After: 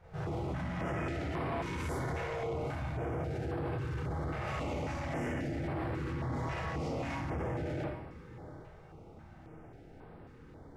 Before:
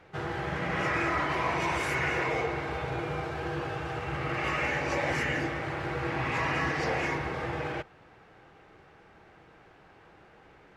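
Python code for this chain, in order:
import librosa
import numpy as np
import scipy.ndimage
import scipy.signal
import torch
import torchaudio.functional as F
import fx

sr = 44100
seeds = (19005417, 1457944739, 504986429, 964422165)

p1 = fx.curve_eq(x, sr, hz=(100.0, 650.0, 2900.0, 9000.0), db=(0, -10, -26, -22))
p2 = p1 + fx.echo_single(p1, sr, ms=807, db=-19.5, dry=0)
p3 = fx.rev_schroeder(p2, sr, rt60_s=0.59, comb_ms=25, drr_db=-6.5)
p4 = fx.over_compress(p3, sr, threshold_db=-37.0, ratio=-1.0)
p5 = p3 + F.gain(torch.from_numpy(p4), 1.5).numpy()
p6 = 10.0 ** (-25.5 / 20.0) * np.tanh(p5 / 10.0 ** (-25.5 / 20.0))
p7 = fx.high_shelf(p6, sr, hz=2300.0, db=11.5)
p8 = fx.filter_held_notch(p7, sr, hz=3.7, low_hz=280.0, high_hz=6400.0)
y = F.gain(torch.from_numpy(p8), -4.5).numpy()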